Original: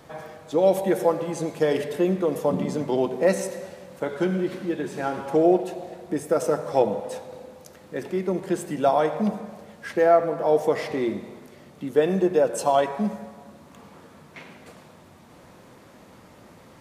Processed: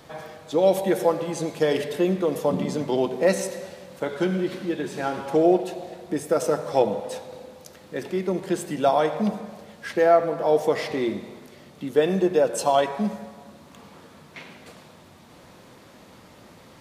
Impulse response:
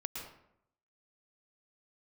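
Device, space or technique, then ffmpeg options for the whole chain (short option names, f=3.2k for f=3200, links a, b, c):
presence and air boost: -af "equalizer=f=3.9k:t=o:w=1.3:g=5,highshelf=f=12k:g=3"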